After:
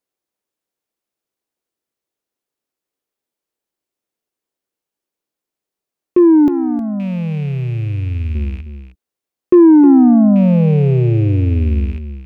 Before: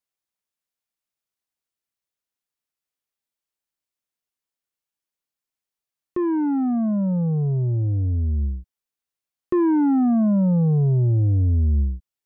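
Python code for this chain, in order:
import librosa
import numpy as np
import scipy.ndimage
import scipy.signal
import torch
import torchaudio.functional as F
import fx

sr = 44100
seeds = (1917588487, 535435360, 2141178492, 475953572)

y = fx.rattle_buzz(x, sr, strikes_db=-33.0, level_db=-32.0)
y = fx.peak_eq(y, sr, hz=380.0, db=fx.steps((0.0, 12.0), (6.48, -2.0), (8.35, 10.5)), octaves=1.9)
y = y + 10.0 ** (-11.0 / 20.0) * np.pad(y, (int(312 * sr / 1000.0), 0))[:len(y)]
y = y * 10.0 ** (2.0 / 20.0)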